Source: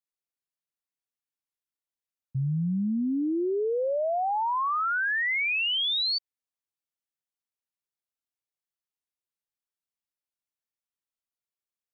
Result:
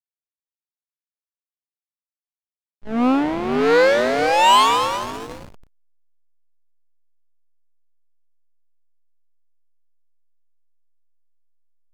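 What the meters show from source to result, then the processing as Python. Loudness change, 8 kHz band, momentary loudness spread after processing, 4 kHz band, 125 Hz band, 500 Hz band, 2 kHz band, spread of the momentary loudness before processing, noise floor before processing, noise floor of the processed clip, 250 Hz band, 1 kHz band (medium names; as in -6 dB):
+9.5 dB, no reading, 16 LU, +2.5 dB, -7.5 dB, +10.0 dB, +3.0 dB, 5 LU, under -85 dBFS, under -85 dBFS, +6.5 dB, +11.0 dB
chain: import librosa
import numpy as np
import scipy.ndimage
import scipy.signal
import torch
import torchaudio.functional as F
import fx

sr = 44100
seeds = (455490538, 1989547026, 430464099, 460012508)

y = fx.graphic_eq_10(x, sr, hz=(250, 500, 1000, 2000, 4000), db=(12, 10, 12, 7, -8))
y = fx.cheby_harmonics(y, sr, harmonics=(3, 6, 8), levels_db=(-8, -20, -16), full_scale_db=-8.0)
y = fx.echo_split(y, sr, split_hz=570.0, low_ms=511, high_ms=217, feedback_pct=52, wet_db=-7.5)
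y = fx.backlash(y, sr, play_db=-16.5)
y = fx.doppler_dist(y, sr, depth_ms=0.26)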